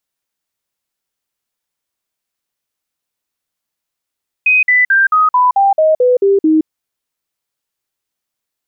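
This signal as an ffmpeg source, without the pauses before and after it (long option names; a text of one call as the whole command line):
ffmpeg -f lavfi -i "aevalsrc='0.447*clip(min(mod(t,0.22),0.17-mod(t,0.22))/0.005,0,1)*sin(2*PI*2510*pow(2,-floor(t/0.22)/3)*mod(t,0.22))':duration=2.2:sample_rate=44100" out.wav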